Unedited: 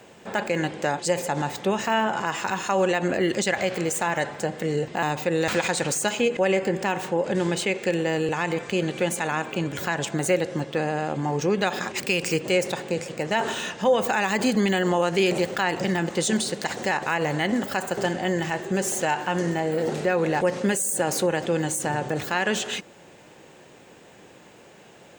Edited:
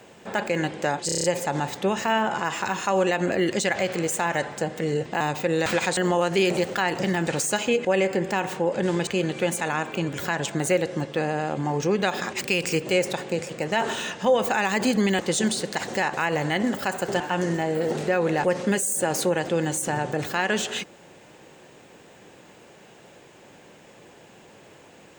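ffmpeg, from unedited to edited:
-filter_complex "[0:a]asplit=12[s0][s1][s2][s3][s4][s5][s6][s7][s8][s9][s10][s11];[s0]atrim=end=1.092[s12];[s1]atrim=start=1.058:end=1.092[s13];[s2]atrim=start=1.058:end=1.092[s14];[s3]atrim=start=1.058:end=1.092[s15];[s4]atrim=start=1.058:end=1.092[s16];[s5]atrim=start=1.058:end=1.092[s17];[s6]atrim=start=1.058:end=5.792[s18];[s7]atrim=start=14.778:end=16.082[s19];[s8]atrim=start=5.788:end=7.592[s20];[s9]atrim=start=8.658:end=14.782[s21];[s10]atrim=start=16.078:end=18.092[s22];[s11]atrim=start=19.168[s23];[s12][s13]acrossfade=d=0.004:c1=hsin:c2=hsin[s24];[s24][s14]acrossfade=d=0.004:c1=hsin:c2=hsin[s25];[s25][s15]acrossfade=d=0.004:c1=hsin:c2=hsin[s26];[s26][s16]acrossfade=d=0.004:c1=hsin:c2=hsin[s27];[s27][s17]acrossfade=d=0.004:c1=hsin:c2=hsin[s28];[s28][s18]acrossfade=d=0.004:c1=hsin:c2=hsin[s29];[s29][s19]acrossfade=d=0.004:c1=hsin:c2=hsin[s30];[s30][s20]acrossfade=d=0.004:c1=hsin:c2=hsin[s31];[s31][s21]acrossfade=d=0.004:c1=hsin:c2=hsin[s32];[s32][s22]acrossfade=d=0.004:c1=hsin:c2=hsin[s33];[s33][s23]acrossfade=d=0.004:c1=hsin:c2=hsin"

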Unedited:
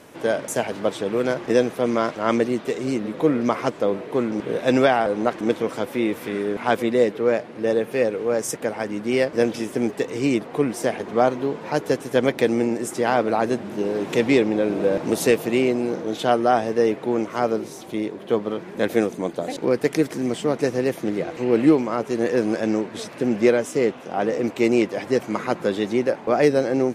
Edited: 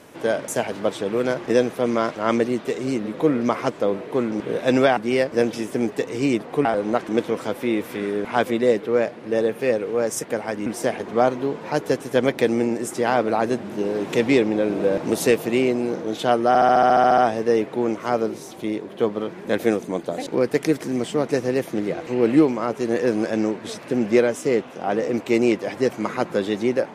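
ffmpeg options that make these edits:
-filter_complex "[0:a]asplit=14[s0][s1][s2][s3][s4][s5][s6][s7][s8][s9][s10][s11][s12][s13];[s0]atrim=end=4.972[s14];[s1]atrim=start=8.978:end=10.662[s15];[s2]atrim=start=4.968:end=8.982[s16];[s3]atrim=start=10.658:end=16.552[s17];[s4]atrim=start=16.478:end=16.552[s18];[s5]atrim=start=16.478:end=16.552[s19];[s6]atrim=start=16.478:end=16.552[s20];[s7]atrim=start=16.478:end=16.552[s21];[s8]atrim=start=16.478:end=16.552[s22];[s9]atrim=start=16.478:end=16.552[s23];[s10]atrim=start=16.478:end=16.552[s24];[s11]atrim=start=16.478:end=16.552[s25];[s12]atrim=start=16.478:end=16.552[s26];[s13]atrim=start=16.478[s27];[s14][s15]acrossfade=d=0.004:c1=hsin:c2=hsin[s28];[s28][s16]acrossfade=d=0.004:c1=hsin:c2=hsin[s29];[s29][s17]acrossfade=d=0.004:c1=hsin:c2=hsin[s30];[s30][s18]acrossfade=d=0.004:c1=hsin:c2=hsin[s31];[s31][s19]acrossfade=d=0.004:c1=hsin:c2=hsin[s32];[s32][s20]acrossfade=d=0.004:c1=hsin:c2=hsin[s33];[s33][s21]acrossfade=d=0.004:c1=hsin:c2=hsin[s34];[s34][s22]acrossfade=d=0.004:c1=hsin:c2=hsin[s35];[s35][s23]acrossfade=d=0.004:c1=hsin:c2=hsin[s36];[s36][s24]acrossfade=d=0.004:c1=hsin:c2=hsin[s37];[s37][s25]acrossfade=d=0.004:c1=hsin:c2=hsin[s38];[s38][s26]acrossfade=d=0.004:c1=hsin:c2=hsin[s39];[s39][s27]acrossfade=d=0.004:c1=hsin:c2=hsin"

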